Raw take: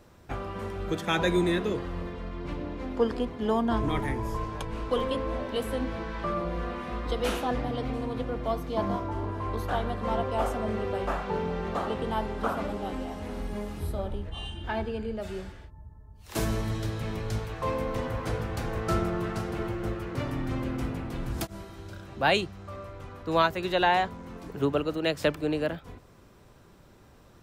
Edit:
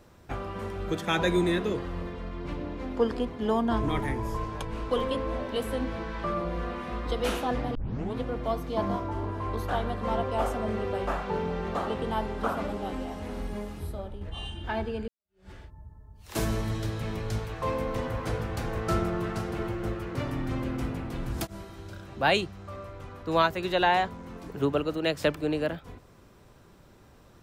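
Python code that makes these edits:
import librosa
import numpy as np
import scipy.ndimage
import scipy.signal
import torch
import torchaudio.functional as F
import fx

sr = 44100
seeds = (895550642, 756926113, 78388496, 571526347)

y = fx.edit(x, sr, fx.tape_start(start_s=7.75, length_s=0.4),
    fx.fade_out_to(start_s=13.45, length_s=0.76, floor_db=-7.5),
    fx.fade_in_span(start_s=15.08, length_s=0.43, curve='exp'), tone=tone)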